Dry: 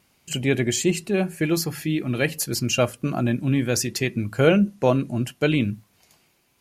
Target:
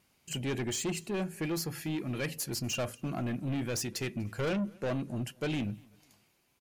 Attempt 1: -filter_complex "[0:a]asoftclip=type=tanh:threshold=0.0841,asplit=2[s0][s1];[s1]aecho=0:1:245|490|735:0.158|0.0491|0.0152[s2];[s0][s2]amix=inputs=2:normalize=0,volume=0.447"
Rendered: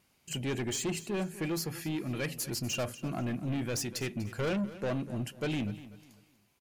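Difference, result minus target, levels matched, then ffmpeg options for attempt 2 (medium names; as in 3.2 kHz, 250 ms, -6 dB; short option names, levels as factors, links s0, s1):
echo-to-direct +10.5 dB
-filter_complex "[0:a]asoftclip=type=tanh:threshold=0.0841,asplit=2[s0][s1];[s1]aecho=0:1:245|490:0.0473|0.0147[s2];[s0][s2]amix=inputs=2:normalize=0,volume=0.447"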